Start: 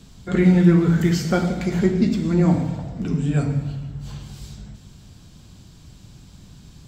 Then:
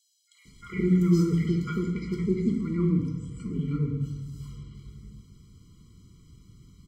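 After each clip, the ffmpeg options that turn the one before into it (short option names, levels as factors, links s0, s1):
-filter_complex "[0:a]acrossover=split=890|3800[s0][s1][s2];[s1]adelay=350[s3];[s0]adelay=450[s4];[s4][s3][s2]amix=inputs=3:normalize=0,afftfilt=real='re*eq(mod(floor(b*sr/1024/480),2),0)':imag='im*eq(mod(floor(b*sr/1024/480),2),0)':win_size=1024:overlap=0.75,volume=0.447"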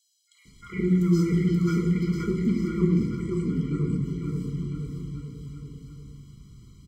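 -af "aecho=1:1:530|1007|1436|1823|2170:0.631|0.398|0.251|0.158|0.1"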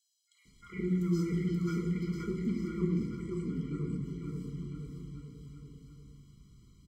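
-af "equalizer=f=110:t=o:w=0.82:g=-3.5,volume=0.398"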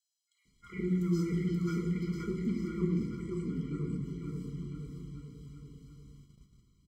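-af "agate=range=0.398:threshold=0.00178:ratio=16:detection=peak"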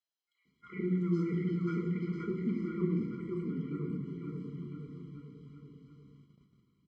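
-af "highpass=160,lowpass=2500,volume=1.12"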